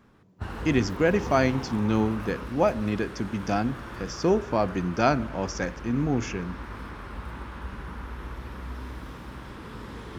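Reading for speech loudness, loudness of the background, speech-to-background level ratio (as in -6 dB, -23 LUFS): -26.5 LUFS, -38.5 LUFS, 12.0 dB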